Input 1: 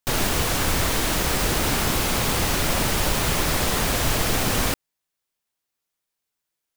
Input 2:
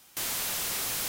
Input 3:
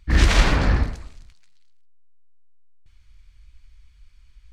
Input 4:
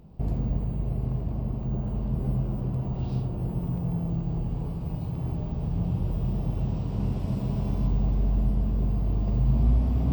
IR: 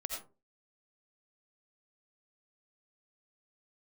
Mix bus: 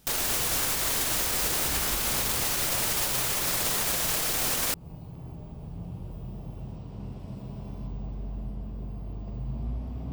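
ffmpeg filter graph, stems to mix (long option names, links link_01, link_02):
-filter_complex "[0:a]highshelf=frequency=4800:gain=9.5,alimiter=limit=-13.5dB:level=0:latency=1,acrossover=split=310[link_01][link_02];[link_01]acompressor=threshold=-32dB:ratio=6[link_03];[link_03][link_02]amix=inputs=2:normalize=0,volume=2dB[link_04];[1:a]volume=-6dB[link_05];[2:a]adelay=1550,volume=-12.5dB[link_06];[3:a]volume=-8dB[link_07];[link_04][link_05][link_06][link_07]amix=inputs=4:normalize=0,lowshelf=frequency=260:gain=-4,alimiter=limit=-17dB:level=0:latency=1:release=183"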